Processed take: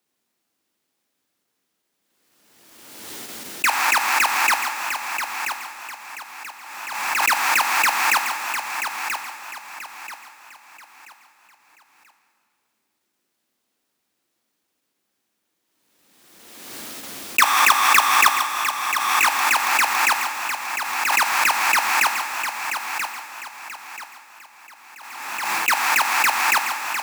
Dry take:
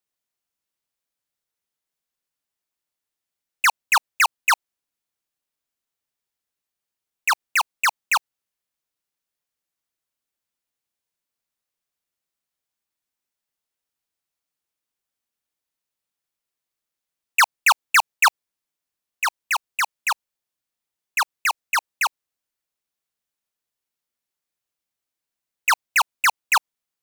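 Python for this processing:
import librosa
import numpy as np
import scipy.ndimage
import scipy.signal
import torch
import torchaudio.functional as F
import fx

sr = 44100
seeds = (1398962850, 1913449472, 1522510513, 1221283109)

p1 = fx.halfwave_hold(x, sr)
p2 = fx.highpass(p1, sr, hz=150.0, slope=6)
p3 = fx.peak_eq(p2, sr, hz=270.0, db=10.5, octaves=1.2)
p4 = fx.level_steps(p3, sr, step_db=12)
p5 = p4 + fx.echo_feedback(p4, sr, ms=983, feedback_pct=33, wet_db=-8, dry=0)
p6 = fx.rev_plate(p5, sr, seeds[0], rt60_s=2.1, hf_ratio=0.95, predelay_ms=0, drr_db=4.0)
p7 = fx.pre_swell(p6, sr, db_per_s=35.0)
y = p7 * librosa.db_to_amplitude(6.5)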